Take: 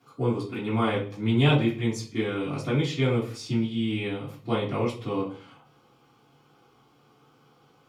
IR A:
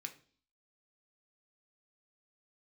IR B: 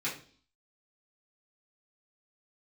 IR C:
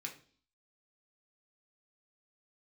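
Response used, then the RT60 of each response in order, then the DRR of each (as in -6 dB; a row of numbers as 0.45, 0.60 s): B; 0.45, 0.45, 0.45 s; 4.5, -9.5, 0.0 dB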